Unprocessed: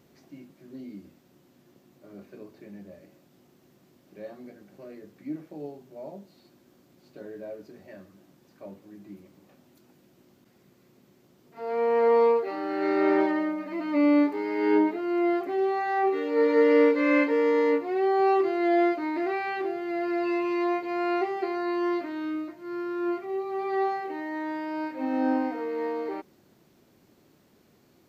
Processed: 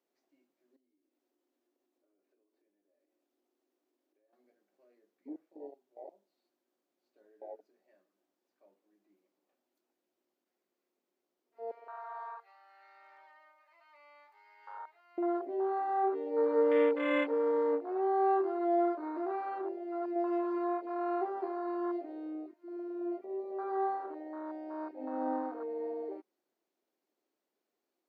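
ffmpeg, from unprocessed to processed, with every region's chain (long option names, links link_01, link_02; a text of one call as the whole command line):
ffmpeg -i in.wav -filter_complex "[0:a]asettb=1/sr,asplit=3[link_01][link_02][link_03];[link_01]atrim=end=0.764[link_04];[link_02]atrim=start=0.76:end=4.33,asetpts=PTS-STARTPTS,afade=type=in:duration=0.004:curve=qsin,afade=type=out:start_time=3.566:duration=0.004:curve=qsin,lowshelf=frequency=200:width_type=q:width=3:gain=-11.5,acompressor=threshold=-53dB:ratio=5:attack=3.2:release=140:knee=1:detection=peak[link_05];[link_03]atrim=start=4.326[link_06];[link_04][link_05]acrossfade=duration=0.004:curve1=hsin:curve2=qsin[link_07];[link_07][link_06]acrossfade=duration=0.004:curve1=qsin:curve2=hsin,asettb=1/sr,asplit=3[link_08][link_09][link_10];[link_08]atrim=end=11.714[link_11];[link_09]atrim=start=11.71:end=15.18,asetpts=PTS-STARTPTS,afade=type=in:duration=0.004:curve=qsin,afade=type=out:start_time=3.466:duration=0.004:curve=qsin,highpass=frequency=820:width=0.5412,highpass=frequency=820:width=1.3066,acompressor=threshold=-34dB:ratio=2.5:attack=3.2:release=140:knee=1:detection=peak,aeval=exprs='clip(val(0),-1,0.0316)':channel_layout=same[link_12];[link_10]atrim=start=15.176[link_13];[link_11][link_12]acrossfade=duration=0.004:curve1=hsin:curve2=qsin[link_14];[link_14][link_13]acrossfade=duration=0.004:curve1=qsin:curve2=hsin,asettb=1/sr,asplit=3[link_15][link_16][link_17];[link_15]atrim=end=20.134[link_18];[link_16]atrim=start=20.13:end=20.58,asetpts=PTS-STARTPTS,afade=type=in:duration=0.004:curve=qsin,afade=type=out:start_time=0.446:duration=0.004:curve=qsin,aeval=exprs='if(lt(val(0),0),0.447*val(0),val(0))':channel_layout=same,asplit=2[link_19][link_20];[link_20]adelay=26,volume=-2dB[link_21];[link_19][link_21]amix=inputs=2:normalize=0,atrim=end_sample=19845[link_22];[link_17]atrim=start=20.576[link_23];[link_18][link_22]acrossfade=duration=0.004:curve1=hsin:curve2=qsin[link_24];[link_24][link_23]acrossfade=duration=0.004:curve1=qsin:curve2=hsin,afwtdn=0.0398,highpass=frequency=300:width=0.5412,highpass=frequency=300:width=1.3066,equalizer=frequency=740:width=1.9:gain=3,volume=-7dB" out.wav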